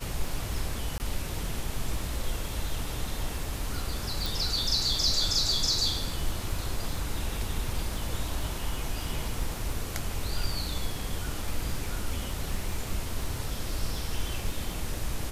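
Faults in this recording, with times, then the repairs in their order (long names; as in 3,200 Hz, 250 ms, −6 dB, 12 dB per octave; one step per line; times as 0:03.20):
surface crackle 40 per second −37 dBFS
0:00.98–0:01.00: drop-out 19 ms
0:04.26: click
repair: click removal
repair the gap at 0:00.98, 19 ms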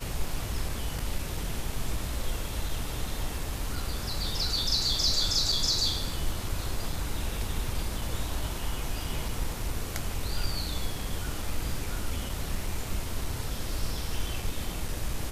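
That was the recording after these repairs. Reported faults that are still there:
none of them is left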